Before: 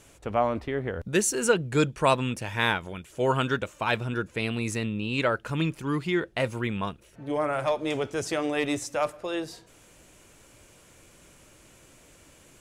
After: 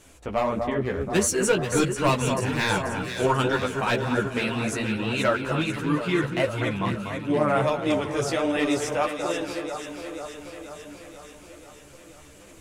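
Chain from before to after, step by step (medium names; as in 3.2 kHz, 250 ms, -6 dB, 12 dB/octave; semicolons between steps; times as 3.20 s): overload inside the chain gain 17.5 dB; echo whose repeats swap between lows and highs 243 ms, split 1.6 kHz, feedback 80%, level -5.5 dB; chorus voices 4, 1.5 Hz, delay 13 ms, depth 3 ms; trim +5 dB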